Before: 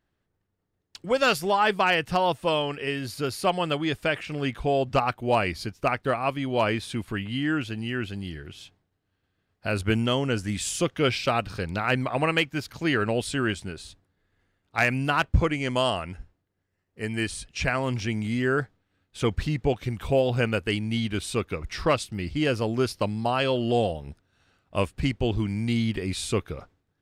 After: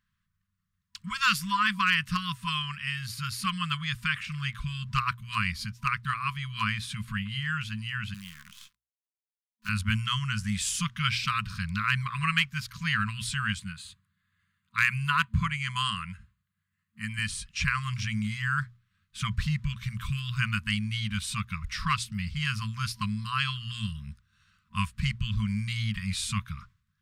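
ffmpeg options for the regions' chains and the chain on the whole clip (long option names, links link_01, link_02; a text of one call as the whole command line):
ffmpeg -i in.wav -filter_complex "[0:a]asettb=1/sr,asplit=3[link_01][link_02][link_03];[link_01]atrim=end=8.144[link_04];[link_02]atrim=start=8.14:end=9.69,asetpts=PTS-STARTPTS,afade=type=in:duration=0.004:curve=qsin,afade=type=out:start_time=1.546:duration=0.004:curve=qsin,aeval=exprs='if(lt(val(0),0),0.447*val(0),val(0))':channel_layout=same,highpass=240,acrusher=bits=8:dc=4:mix=0:aa=0.000001[link_05];[link_03]atrim=start=9.686[link_06];[link_04][link_05]acrossfade=duration=0.004:curve1=hsin:curve2=qsin[link_07];[link_07][link_06]acrossfade=duration=0.004:curve1=qsin:curve2=hsin,asettb=1/sr,asplit=3[link_08][link_09][link_10];[link_08]atrim=end=13.594[link_11];[link_09]atrim=start=13.59:end=17.19,asetpts=PTS-STARTPTS,afade=type=in:duration=0.004:curve=qsin,afade=type=out:start_time=3.596:duration=0.004:curve=qsin,highpass=97,equalizer=frequency=5500:width=7.6:gain=-14.5[link_12];[link_10]atrim=start=17.186[link_13];[link_11][link_12]acrossfade=duration=0.004:curve1=hsin:curve2=qsin[link_14];[link_14][link_13]acrossfade=duration=0.004:curve1=qsin:curve2=hsin,bandreject=frequency=60:width_type=h:width=6,bandreject=frequency=120:width_type=h:width=6,afftfilt=real='re*(1-between(b*sr/4096,220,980))':imag='im*(1-between(b*sr/4096,220,980))':win_size=4096:overlap=0.75" out.wav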